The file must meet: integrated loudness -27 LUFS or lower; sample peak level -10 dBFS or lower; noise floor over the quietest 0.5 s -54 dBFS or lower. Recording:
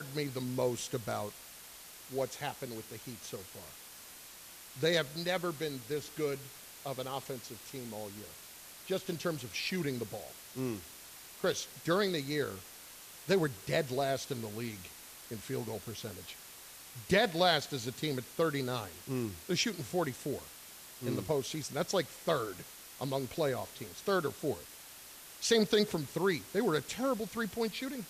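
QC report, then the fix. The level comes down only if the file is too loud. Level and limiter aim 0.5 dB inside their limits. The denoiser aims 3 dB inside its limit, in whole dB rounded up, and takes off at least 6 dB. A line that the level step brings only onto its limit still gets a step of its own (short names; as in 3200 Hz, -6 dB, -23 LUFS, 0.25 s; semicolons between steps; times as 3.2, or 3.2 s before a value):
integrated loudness -35.0 LUFS: OK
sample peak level -15.5 dBFS: OK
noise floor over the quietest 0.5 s -52 dBFS: fail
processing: denoiser 6 dB, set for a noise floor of -52 dBFS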